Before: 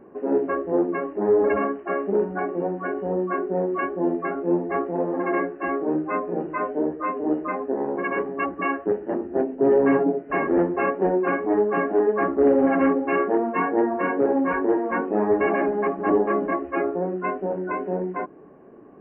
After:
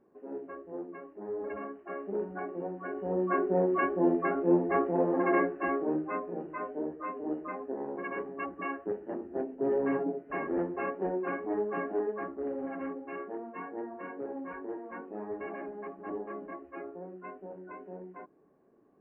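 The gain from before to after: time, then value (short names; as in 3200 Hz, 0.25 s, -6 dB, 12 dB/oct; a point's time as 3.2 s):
1.3 s -18.5 dB
2.28 s -11 dB
2.84 s -11 dB
3.35 s -2.5 dB
5.45 s -2.5 dB
6.39 s -11 dB
11.98 s -11 dB
12.42 s -18 dB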